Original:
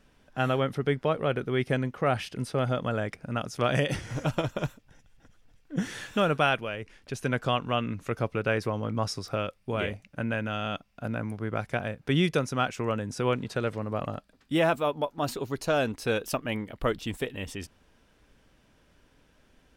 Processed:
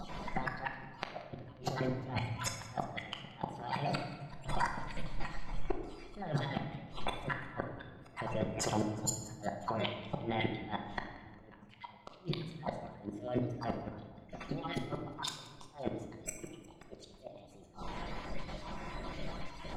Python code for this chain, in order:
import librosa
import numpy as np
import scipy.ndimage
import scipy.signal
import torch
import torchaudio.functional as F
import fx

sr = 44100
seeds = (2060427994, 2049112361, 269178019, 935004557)

y = fx.spec_dropout(x, sr, seeds[0], share_pct=29)
y = scipy.signal.sosfilt(scipy.signal.butter(2, 3700.0, 'lowpass', fs=sr, output='sos'), y)
y = fx.peak_eq(y, sr, hz=680.0, db=11.5, octaves=0.41)
y = y + 0.33 * np.pad(y, (int(5.9 * sr / 1000.0), 0))[:len(y)]
y = fx.dynamic_eq(y, sr, hz=1400.0, q=0.8, threshold_db=-37.0, ratio=4.0, max_db=-4)
y = fx.over_compress(y, sr, threshold_db=-40.0, ratio=-1.0)
y = fx.formant_shift(y, sr, semitones=5)
y = fx.gate_flip(y, sr, shuts_db=-28.0, range_db=-32)
y = fx.echo_feedback(y, sr, ms=179, feedback_pct=52, wet_db=-19.5)
y = fx.room_shoebox(y, sr, seeds[1], volume_m3=790.0, walls='mixed', distance_m=1.1)
y = F.gain(torch.from_numpy(y), 7.0).numpy()